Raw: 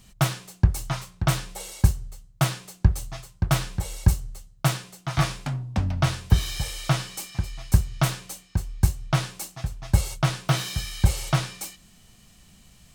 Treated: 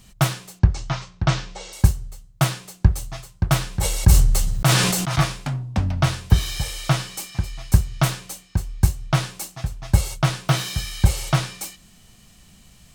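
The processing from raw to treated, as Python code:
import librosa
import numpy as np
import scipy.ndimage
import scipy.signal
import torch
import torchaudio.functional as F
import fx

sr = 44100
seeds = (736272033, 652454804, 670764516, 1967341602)

y = fx.cheby2_lowpass(x, sr, hz=11000.0, order=4, stop_db=40, at=(0.59, 1.73))
y = fx.sustainer(y, sr, db_per_s=28.0, at=(3.71, 5.21))
y = F.gain(torch.from_numpy(y), 3.0).numpy()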